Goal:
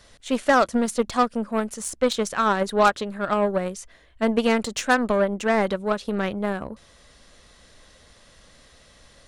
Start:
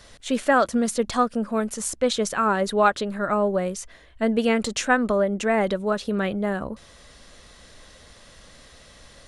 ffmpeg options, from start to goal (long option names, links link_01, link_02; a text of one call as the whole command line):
ffmpeg -i in.wav -af "aeval=exprs='0.473*(cos(1*acos(clip(val(0)/0.473,-1,1)))-cos(1*PI/2))+0.0596*(cos(5*acos(clip(val(0)/0.473,-1,1)))-cos(5*PI/2))+0.0668*(cos(7*acos(clip(val(0)/0.473,-1,1)))-cos(7*PI/2))+0.00299*(cos(8*acos(clip(val(0)/0.473,-1,1)))-cos(8*PI/2))':channel_layout=same" out.wav